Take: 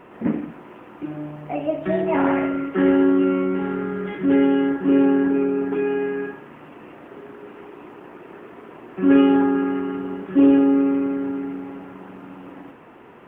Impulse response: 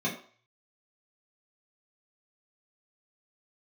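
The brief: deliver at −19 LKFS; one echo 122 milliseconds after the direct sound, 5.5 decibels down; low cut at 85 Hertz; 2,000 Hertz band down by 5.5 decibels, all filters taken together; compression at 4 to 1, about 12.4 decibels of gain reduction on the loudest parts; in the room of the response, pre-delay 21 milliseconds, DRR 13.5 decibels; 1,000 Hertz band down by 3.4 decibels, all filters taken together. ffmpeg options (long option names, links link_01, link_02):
-filter_complex "[0:a]highpass=85,equalizer=frequency=1000:width_type=o:gain=-3,equalizer=frequency=2000:width_type=o:gain=-6,acompressor=threshold=-26dB:ratio=4,aecho=1:1:122:0.531,asplit=2[link_01][link_02];[1:a]atrim=start_sample=2205,adelay=21[link_03];[link_02][link_03]afir=irnorm=-1:irlink=0,volume=-21.5dB[link_04];[link_01][link_04]amix=inputs=2:normalize=0,volume=11dB"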